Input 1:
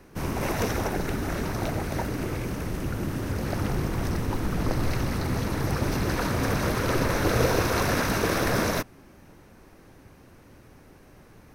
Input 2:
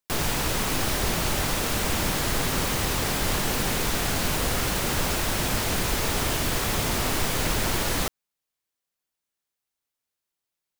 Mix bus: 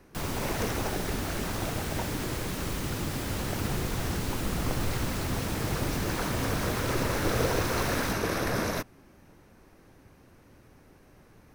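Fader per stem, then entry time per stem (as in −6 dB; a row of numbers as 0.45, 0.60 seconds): −4.5, −11.0 decibels; 0.00, 0.05 seconds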